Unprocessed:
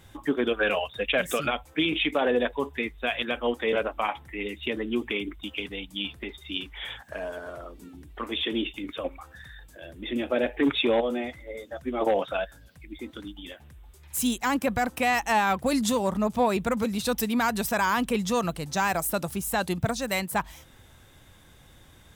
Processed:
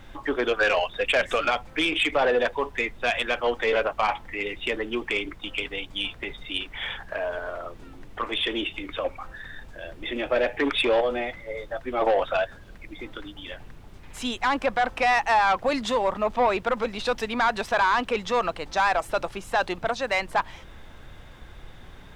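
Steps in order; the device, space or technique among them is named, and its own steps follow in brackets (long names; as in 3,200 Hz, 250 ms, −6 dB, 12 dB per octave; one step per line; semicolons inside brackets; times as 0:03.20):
aircraft cabin announcement (band-pass filter 490–3,100 Hz; soft clipping −21.5 dBFS, distortion −14 dB; brown noise bed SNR 16 dB)
level +7 dB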